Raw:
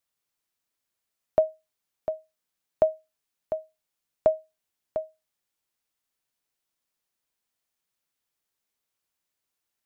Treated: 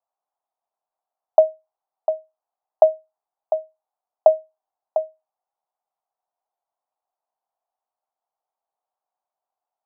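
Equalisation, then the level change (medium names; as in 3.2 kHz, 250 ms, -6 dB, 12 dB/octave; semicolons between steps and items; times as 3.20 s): resonant high-pass 740 Hz, resonance Q 4.9; low-pass 1.1 kHz 24 dB/octave; +1.0 dB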